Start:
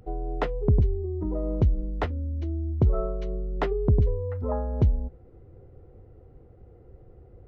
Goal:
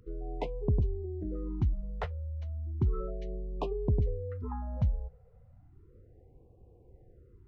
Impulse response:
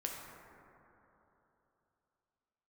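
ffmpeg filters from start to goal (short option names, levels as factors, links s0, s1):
-af "afftfilt=real='re*(1-between(b*sr/1024,280*pow(1700/280,0.5+0.5*sin(2*PI*0.34*pts/sr))/1.41,280*pow(1700/280,0.5+0.5*sin(2*PI*0.34*pts/sr))*1.41))':imag='im*(1-between(b*sr/1024,280*pow(1700/280,0.5+0.5*sin(2*PI*0.34*pts/sr))/1.41,280*pow(1700/280,0.5+0.5*sin(2*PI*0.34*pts/sr))*1.41))':win_size=1024:overlap=0.75,volume=0.447"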